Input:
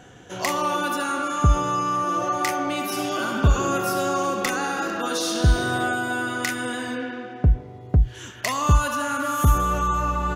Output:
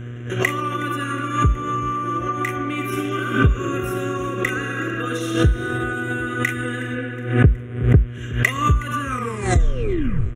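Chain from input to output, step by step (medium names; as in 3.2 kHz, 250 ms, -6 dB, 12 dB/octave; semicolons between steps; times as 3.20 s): tape stop on the ending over 1.35 s; low-pass 3.9 kHz 6 dB/octave; comb 2.5 ms, depth 51%; in parallel at -2 dB: peak limiter -15.5 dBFS, peak gain reduction 11 dB; on the sum: compression 3:1, threshold -16 dBFS, peak gain reduction 7.5 dB; transient shaper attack +8 dB, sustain -2 dB; mains buzz 120 Hz, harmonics 29, -31 dBFS -8 dB/octave; static phaser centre 2 kHz, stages 4; on a send: feedback delay 368 ms, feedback 57%, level -20.5 dB; on the sum: swell ahead of each attack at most 97 dB/s; trim -1 dB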